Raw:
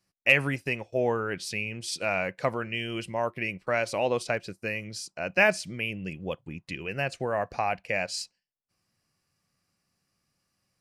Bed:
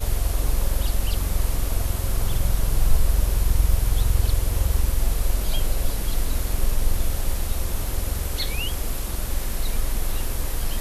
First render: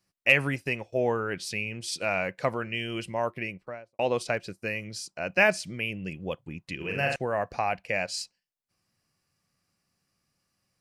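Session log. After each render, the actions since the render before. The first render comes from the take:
0:03.28–0:03.99: fade out and dull
0:06.76–0:07.16: flutter between parallel walls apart 7.1 metres, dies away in 0.83 s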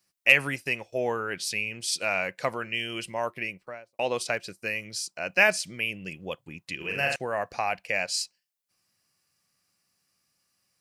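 spectral tilt +2 dB per octave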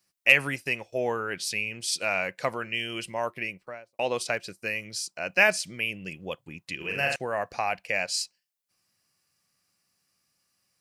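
no processing that can be heard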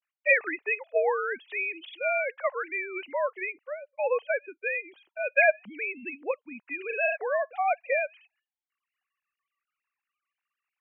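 three sine waves on the formant tracks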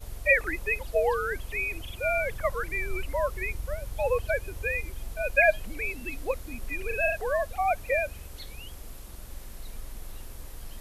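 mix in bed −16 dB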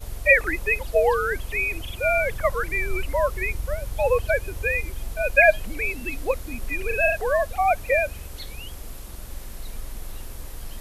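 level +5.5 dB

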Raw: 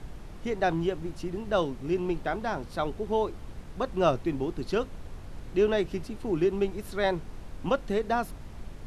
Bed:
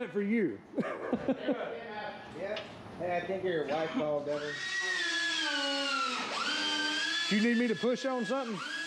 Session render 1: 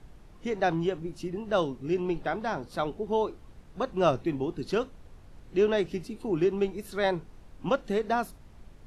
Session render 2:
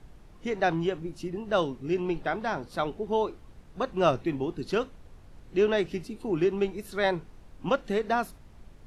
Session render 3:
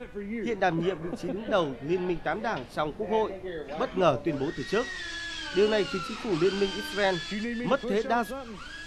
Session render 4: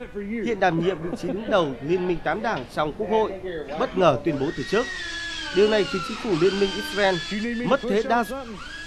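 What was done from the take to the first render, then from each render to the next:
noise reduction from a noise print 9 dB
dynamic equaliser 2,100 Hz, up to +3 dB, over −44 dBFS, Q 0.79
mix in bed −4.5 dB
level +5 dB

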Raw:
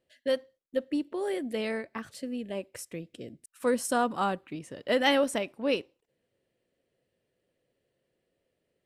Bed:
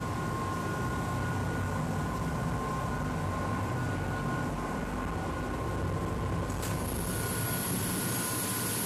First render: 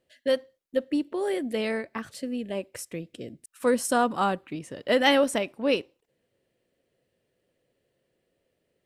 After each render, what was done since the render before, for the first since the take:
level +3.5 dB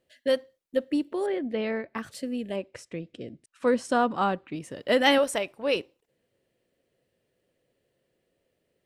0:01.26–0:01.95: high-frequency loss of the air 260 metres
0:02.56–0:04.53: high-frequency loss of the air 100 metres
0:05.18–0:05.76: parametric band 240 Hz −10 dB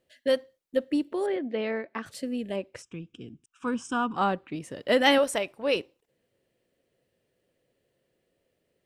0:01.36–0:02.06: band-pass filter 210–5,200 Hz
0:02.82–0:04.16: phaser with its sweep stopped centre 2,900 Hz, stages 8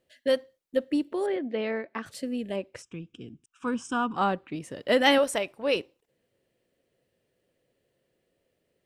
no processing that can be heard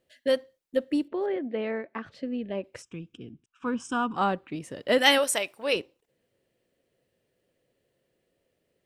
0:01.08–0:02.64: high-frequency loss of the air 230 metres
0:03.17–0:03.80: Bessel low-pass filter 3,500 Hz
0:04.98–0:05.73: spectral tilt +2.5 dB per octave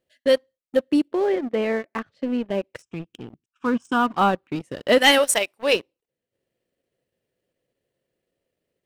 transient designer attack −1 dB, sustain −8 dB
leveller curve on the samples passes 2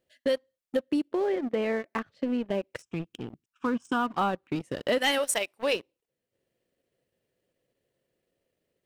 downward compressor 3 to 1, threshold −26 dBFS, peak gain reduction 11 dB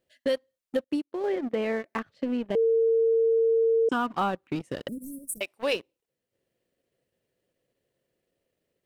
0:00.84–0:01.24: expander for the loud parts 2.5 to 1, over −36 dBFS
0:02.55–0:03.89: beep over 454 Hz −19 dBFS
0:04.88–0:05.41: inverse Chebyshev band-stop filter 900–3,300 Hz, stop band 70 dB

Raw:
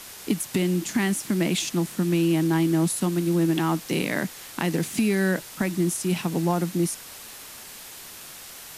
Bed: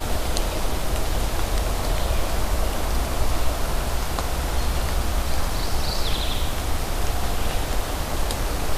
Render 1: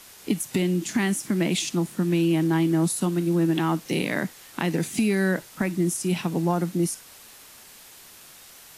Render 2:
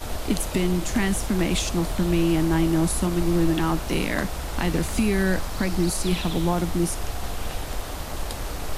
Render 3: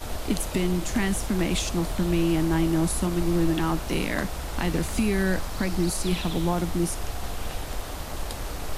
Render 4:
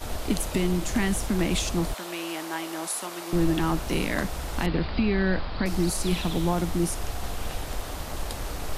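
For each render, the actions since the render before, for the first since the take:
noise reduction from a noise print 6 dB
mix in bed −6 dB
level −2 dB
0:01.94–0:03.33: high-pass filter 620 Hz; 0:04.66–0:05.66: Butterworth low-pass 4,900 Hz 96 dB per octave

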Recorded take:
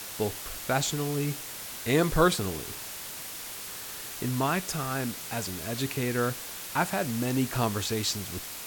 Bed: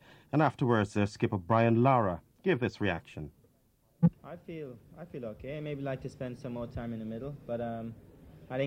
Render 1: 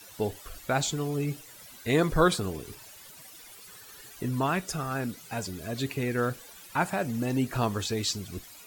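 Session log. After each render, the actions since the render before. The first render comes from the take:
broadband denoise 14 dB, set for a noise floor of −40 dBFS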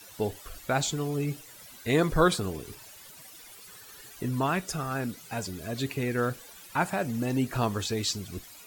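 no processing that can be heard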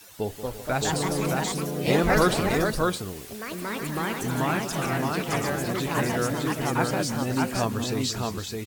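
multi-tap delay 183/339/616 ms −12.5/−15/−3 dB
delay with pitch and tempo change per echo 266 ms, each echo +3 semitones, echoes 3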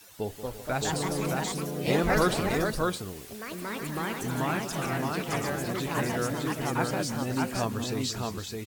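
level −3.5 dB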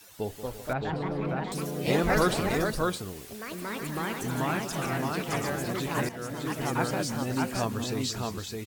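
0:00.73–0:01.52: high-frequency loss of the air 410 metres
0:06.09–0:06.61: fade in, from −13.5 dB

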